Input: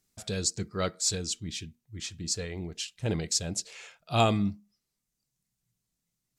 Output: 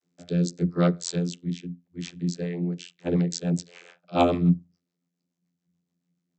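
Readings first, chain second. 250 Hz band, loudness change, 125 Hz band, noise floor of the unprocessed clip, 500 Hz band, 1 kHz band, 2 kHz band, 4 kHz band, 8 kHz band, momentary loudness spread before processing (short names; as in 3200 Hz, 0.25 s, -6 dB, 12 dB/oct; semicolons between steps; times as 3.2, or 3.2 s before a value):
+9.0 dB, +4.0 dB, +7.0 dB, -84 dBFS, +5.0 dB, +2.5 dB, -1.5 dB, -6.0 dB, -8.5 dB, 14 LU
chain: vocoder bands 32, saw 87 Hz; rotary speaker horn 0.8 Hz, later 7 Hz, at 2.02; gain +8 dB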